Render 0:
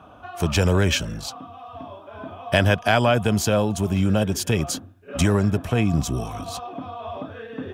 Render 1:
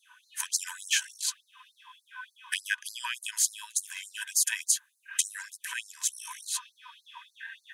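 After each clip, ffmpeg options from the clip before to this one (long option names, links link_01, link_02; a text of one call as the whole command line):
ffmpeg -i in.wav -af "superequalizer=10b=0.251:11b=2:15b=2.24:16b=3.16,acompressor=threshold=-19dB:ratio=12,afftfilt=real='re*gte(b*sr/1024,880*pow(4100/880,0.5+0.5*sin(2*PI*3.4*pts/sr)))':imag='im*gte(b*sr/1024,880*pow(4100/880,0.5+0.5*sin(2*PI*3.4*pts/sr)))':win_size=1024:overlap=0.75" out.wav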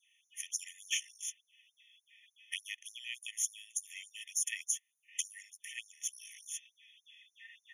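ffmpeg -i in.wav -af "afftfilt=real='re*eq(mod(floor(b*sr/1024/1800),2),1)':imag='im*eq(mod(floor(b*sr/1024/1800),2),1)':win_size=1024:overlap=0.75,volume=-6.5dB" out.wav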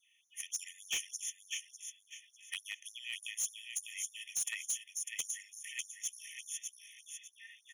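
ffmpeg -i in.wav -af "aecho=1:1:600|1200|1800:0.501|0.135|0.0365,asoftclip=type=hard:threshold=-29.5dB" out.wav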